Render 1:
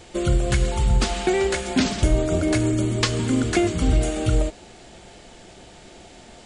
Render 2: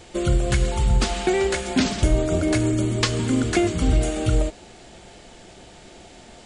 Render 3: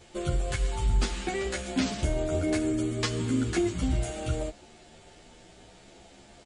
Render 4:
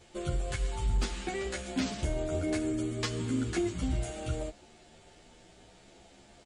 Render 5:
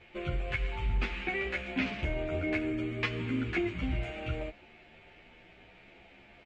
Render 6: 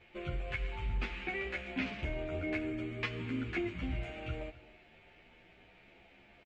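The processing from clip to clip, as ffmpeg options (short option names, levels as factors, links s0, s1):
-af anull
-filter_complex "[0:a]asplit=2[s0][s1];[s1]adelay=11.1,afreqshift=0.45[s2];[s0][s2]amix=inputs=2:normalize=1,volume=0.596"
-af "asoftclip=type=hard:threshold=0.133,volume=0.631"
-af "lowpass=f=2400:t=q:w=4,volume=0.841"
-af "aecho=1:1:262:0.106,volume=0.596"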